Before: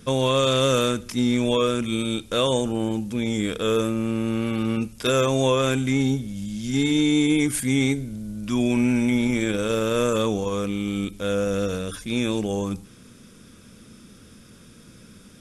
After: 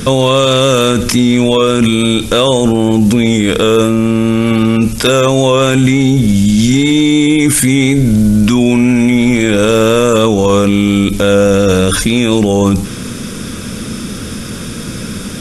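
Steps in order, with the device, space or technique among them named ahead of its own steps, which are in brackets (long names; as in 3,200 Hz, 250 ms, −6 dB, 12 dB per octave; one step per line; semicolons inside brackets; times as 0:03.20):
loud club master (downward compressor 2.5 to 1, threshold −23 dBFS, peak gain reduction 5 dB; hard clipping −16.5 dBFS, distortion −40 dB; boost into a limiter +26.5 dB)
level −1 dB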